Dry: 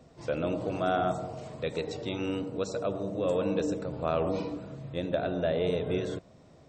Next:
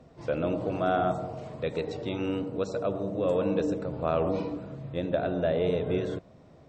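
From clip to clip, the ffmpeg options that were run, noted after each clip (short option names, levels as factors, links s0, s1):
-af "lowpass=f=2700:p=1,volume=1.26"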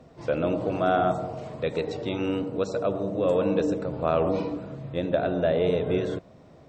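-af "lowshelf=f=150:g=-3,volume=1.5"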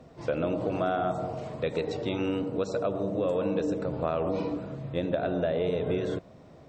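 -af "acompressor=threshold=0.0631:ratio=6"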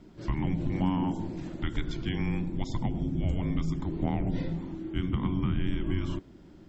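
-af "afreqshift=-460"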